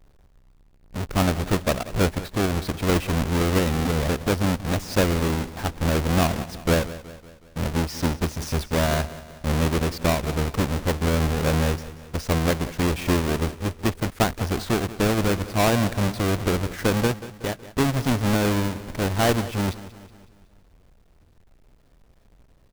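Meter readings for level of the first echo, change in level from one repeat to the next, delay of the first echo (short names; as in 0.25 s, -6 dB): -16.0 dB, -5.5 dB, 0.185 s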